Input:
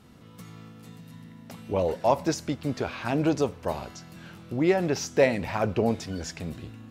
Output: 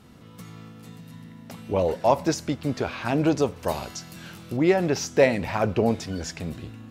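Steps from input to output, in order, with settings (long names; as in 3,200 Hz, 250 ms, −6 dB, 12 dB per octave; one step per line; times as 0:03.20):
0:03.56–0:04.57: high-shelf EQ 3,300 Hz +9 dB
level +2.5 dB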